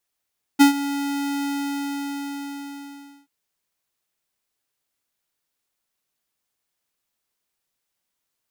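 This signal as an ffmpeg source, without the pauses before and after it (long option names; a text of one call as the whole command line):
ffmpeg -f lavfi -i "aevalsrc='0.316*(2*lt(mod(282*t,1),0.5)-1)':duration=2.68:sample_rate=44100,afade=type=in:duration=0.022,afade=type=out:start_time=0.022:duration=0.114:silence=0.168,afade=type=out:start_time=0.85:duration=1.83" out.wav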